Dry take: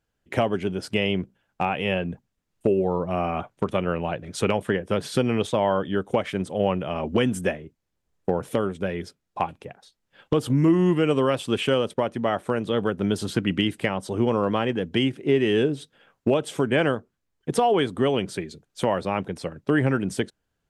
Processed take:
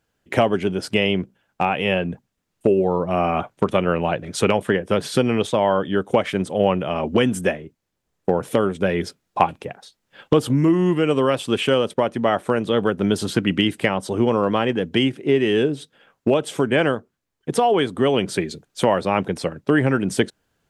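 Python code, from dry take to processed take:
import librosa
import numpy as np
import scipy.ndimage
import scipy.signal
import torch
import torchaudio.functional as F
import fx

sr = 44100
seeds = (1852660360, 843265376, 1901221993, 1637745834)

p1 = fx.low_shelf(x, sr, hz=71.0, db=-9.5)
p2 = fx.rider(p1, sr, range_db=10, speed_s=0.5)
p3 = p1 + F.gain(torch.from_numpy(p2), 3.0).numpy()
y = F.gain(torch.from_numpy(p3), -3.0).numpy()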